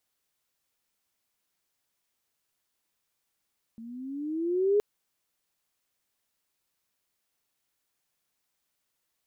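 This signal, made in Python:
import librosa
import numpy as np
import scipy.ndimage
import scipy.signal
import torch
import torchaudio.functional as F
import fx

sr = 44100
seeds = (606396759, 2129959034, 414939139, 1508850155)

y = fx.riser_tone(sr, length_s=1.02, level_db=-19.0, wave='sine', hz=223.0, rise_st=11.0, swell_db=21.5)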